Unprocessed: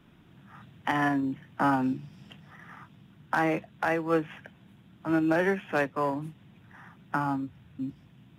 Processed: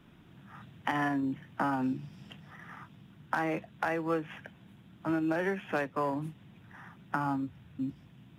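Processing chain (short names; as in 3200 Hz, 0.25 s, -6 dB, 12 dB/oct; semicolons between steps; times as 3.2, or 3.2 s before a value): compressor, threshold -27 dBFS, peak gain reduction 7 dB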